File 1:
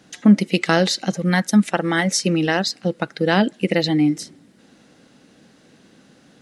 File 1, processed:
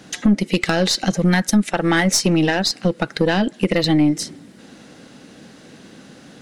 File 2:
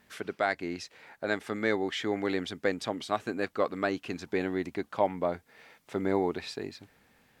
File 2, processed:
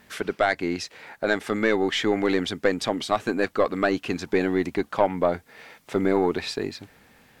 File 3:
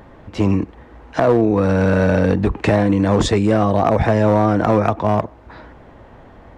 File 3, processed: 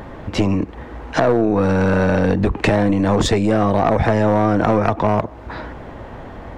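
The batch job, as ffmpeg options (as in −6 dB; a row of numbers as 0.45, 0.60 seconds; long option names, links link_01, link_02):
-af "acompressor=threshold=-23dB:ratio=3,aeval=exprs='0.447*(cos(1*acos(clip(val(0)/0.447,-1,1)))-cos(1*PI/2))+0.0251*(cos(4*acos(clip(val(0)/0.447,-1,1)))-cos(4*PI/2))+0.0562*(cos(5*acos(clip(val(0)/0.447,-1,1)))-cos(5*PI/2))+0.0158*(cos(8*acos(clip(val(0)/0.447,-1,1)))-cos(8*PI/2))':channel_layout=same,volume=4.5dB"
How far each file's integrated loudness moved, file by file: +1.0, +7.0, −0.5 LU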